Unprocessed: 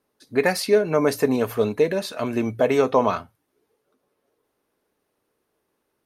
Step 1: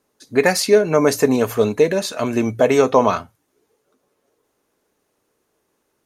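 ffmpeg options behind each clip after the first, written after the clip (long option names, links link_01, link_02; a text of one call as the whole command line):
ffmpeg -i in.wav -af "equalizer=frequency=6800:width=2.5:gain=8.5,volume=4.5dB" out.wav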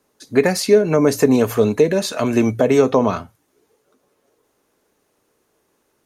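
ffmpeg -i in.wav -filter_complex "[0:a]acrossover=split=420[link_01][link_02];[link_02]acompressor=threshold=-23dB:ratio=4[link_03];[link_01][link_03]amix=inputs=2:normalize=0,volume=3.5dB" out.wav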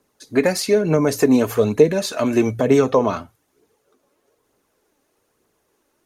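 ffmpeg -i in.wav -af "aphaser=in_gain=1:out_gain=1:delay=3.8:decay=0.38:speed=1.1:type=triangular,volume=-2dB" out.wav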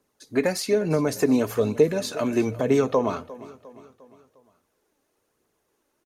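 ffmpeg -i in.wav -af "aecho=1:1:353|706|1059|1412:0.119|0.0594|0.0297|0.0149,volume=-5.5dB" out.wav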